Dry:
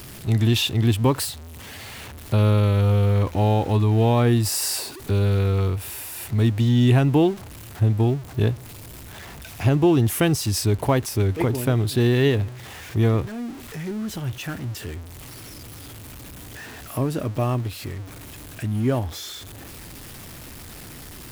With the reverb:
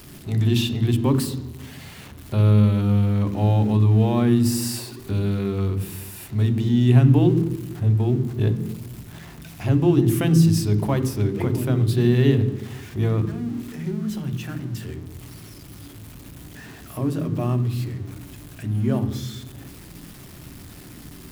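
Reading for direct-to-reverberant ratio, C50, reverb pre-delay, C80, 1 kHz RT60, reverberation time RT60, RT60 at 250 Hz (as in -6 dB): 9.0 dB, 12.0 dB, 3 ms, 14.5 dB, 1.0 s, 1.1 s, 1.3 s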